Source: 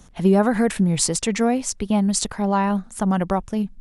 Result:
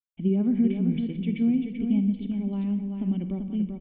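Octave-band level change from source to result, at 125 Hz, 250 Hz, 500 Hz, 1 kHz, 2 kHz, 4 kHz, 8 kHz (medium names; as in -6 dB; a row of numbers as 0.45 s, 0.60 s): -5.0 dB, -3.0 dB, -14.0 dB, under -25 dB, under -15 dB, under -15 dB, under -40 dB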